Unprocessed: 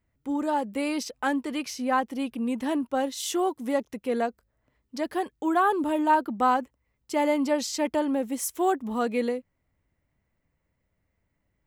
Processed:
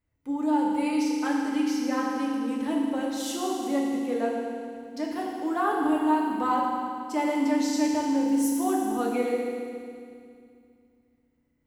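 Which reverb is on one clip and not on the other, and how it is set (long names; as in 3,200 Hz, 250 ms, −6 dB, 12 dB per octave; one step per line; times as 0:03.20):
feedback delay network reverb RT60 2.3 s, low-frequency decay 1.35×, high-frequency decay 1×, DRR −3 dB
level −6.5 dB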